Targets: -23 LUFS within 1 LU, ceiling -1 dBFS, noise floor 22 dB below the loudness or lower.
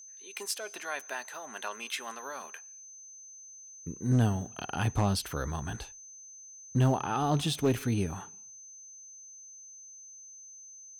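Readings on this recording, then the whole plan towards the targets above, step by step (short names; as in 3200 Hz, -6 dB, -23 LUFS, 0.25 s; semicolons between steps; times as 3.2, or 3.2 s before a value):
clipped 0.3%; flat tops at -19.0 dBFS; steady tone 6200 Hz; tone level -47 dBFS; loudness -32.0 LUFS; peak -19.0 dBFS; loudness target -23.0 LUFS
-> clip repair -19 dBFS; notch 6200 Hz, Q 30; gain +9 dB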